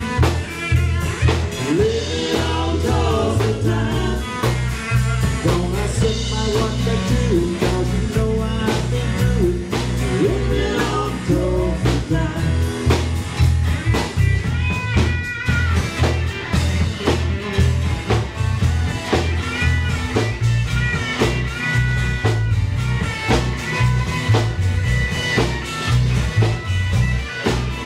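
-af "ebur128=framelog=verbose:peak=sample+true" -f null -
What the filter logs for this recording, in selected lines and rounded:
Integrated loudness:
  I:         -19.4 LUFS
  Threshold: -29.4 LUFS
Loudness range:
  LRA:         0.8 LU
  Threshold: -39.4 LUFS
  LRA low:   -19.8 LUFS
  LRA high:  -19.0 LUFS
Sample peak:
  Peak:       -6.8 dBFS
True peak:
  Peak:       -6.8 dBFS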